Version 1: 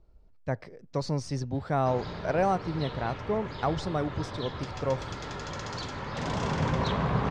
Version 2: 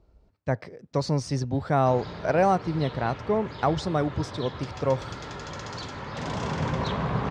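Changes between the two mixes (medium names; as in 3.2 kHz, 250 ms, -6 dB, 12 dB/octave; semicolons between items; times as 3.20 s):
speech +4.5 dB; master: add high-pass 50 Hz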